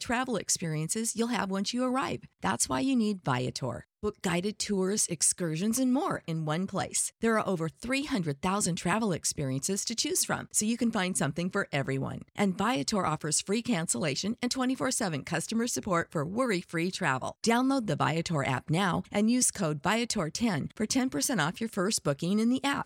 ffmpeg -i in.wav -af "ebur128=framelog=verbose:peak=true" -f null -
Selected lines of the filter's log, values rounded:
Integrated loudness:
  I:         -29.4 LUFS
  Threshold: -39.4 LUFS
Loudness range:
  LRA:         1.9 LU
  Threshold: -49.4 LUFS
  LRA low:   -30.2 LUFS
  LRA high:  -28.3 LUFS
True peak:
  Peak:      -11.7 dBFS